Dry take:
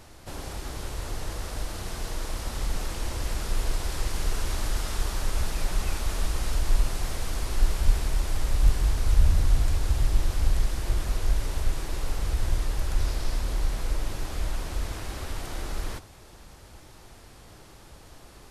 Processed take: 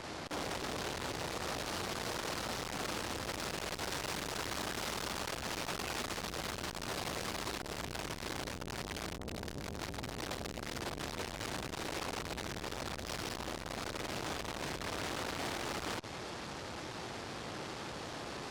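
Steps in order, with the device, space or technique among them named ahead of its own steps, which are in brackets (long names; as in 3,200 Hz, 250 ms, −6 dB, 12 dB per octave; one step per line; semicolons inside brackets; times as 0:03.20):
valve radio (band-pass filter 150–5,400 Hz; tube saturation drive 48 dB, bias 0.65; saturating transformer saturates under 430 Hz)
level +14.5 dB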